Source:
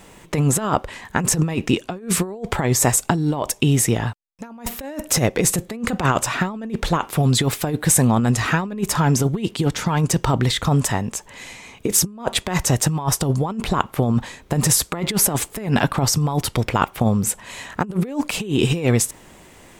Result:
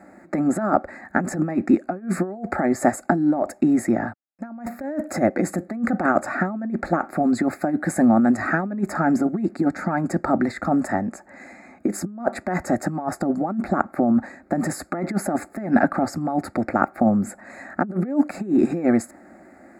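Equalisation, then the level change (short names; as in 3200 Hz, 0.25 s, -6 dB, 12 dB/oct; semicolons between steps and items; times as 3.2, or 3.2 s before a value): running mean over 15 samples; HPF 150 Hz 12 dB/oct; fixed phaser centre 670 Hz, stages 8; +5.0 dB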